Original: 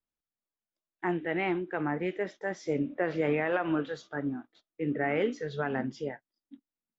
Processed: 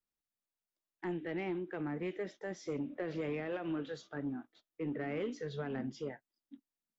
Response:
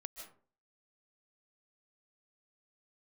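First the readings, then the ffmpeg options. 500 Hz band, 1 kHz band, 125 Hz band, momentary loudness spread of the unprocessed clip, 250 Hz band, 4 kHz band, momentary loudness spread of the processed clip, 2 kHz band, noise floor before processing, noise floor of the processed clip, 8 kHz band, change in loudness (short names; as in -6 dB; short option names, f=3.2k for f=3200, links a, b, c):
-8.0 dB, -12.0 dB, -6.0 dB, 8 LU, -6.5 dB, -6.5 dB, 6 LU, -11.5 dB, under -85 dBFS, under -85 dBFS, n/a, -8.0 dB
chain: -filter_complex "[0:a]acrossover=split=510|2600[a][b][c];[a]acompressor=threshold=-30dB:ratio=4[d];[b]acompressor=threshold=-44dB:ratio=4[e];[c]acompressor=threshold=-46dB:ratio=4[f];[d][e][f]amix=inputs=3:normalize=0,asoftclip=type=tanh:threshold=-25.5dB,volume=-3dB"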